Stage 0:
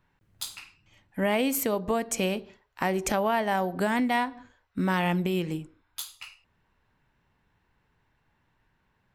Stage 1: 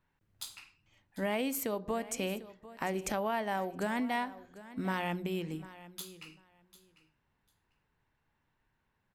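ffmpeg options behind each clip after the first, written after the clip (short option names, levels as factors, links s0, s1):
-af "bandreject=f=60:t=h:w=6,bandreject=f=120:t=h:w=6,bandreject=f=180:t=h:w=6,aecho=1:1:747|1494:0.141|0.024,volume=0.422"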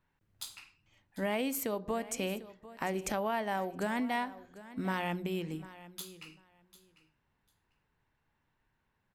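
-af anull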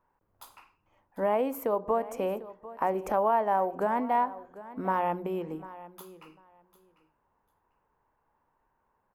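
-af "equalizer=f=125:t=o:w=1:g=-6,equalizer=f=500:t=o:w=1:g=7,equalizer=f=1000:t=o:w=1:g=11,equalizer=f=2000:t=o:w=1:g=-4,equalizer=f=4000:t=o:w=1:g=-12,equalizer=f=8000:t=o:w=1:g=-11"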